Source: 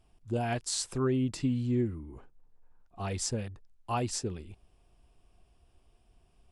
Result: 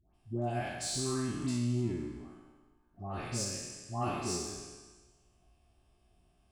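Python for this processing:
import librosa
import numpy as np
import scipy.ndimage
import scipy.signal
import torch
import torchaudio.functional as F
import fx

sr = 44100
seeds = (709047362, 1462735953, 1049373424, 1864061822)

p1 = fx.spec_trails(x, sr, decay_s=1.3)
p2 = fx.notch_comb(p1, sr, f0_hz=480.0)
p3 = 10.0 ** (-31.5 / 20.0) * np.tanh(p2 / 10.0 ** (-31.5 / 20.0))
p4 = p2 + F.gain(torch.from_numpy(p3), -4.0).numpy()
p5 = fx.comb_fb(p4, sr, f0_hz=60.0, decay_s=0.85, harmonics='all', damping=0.0, mix_pct=70)
y = fx.dispersion(p5, sr, late='highs', ms=145.0, hz=1200.0)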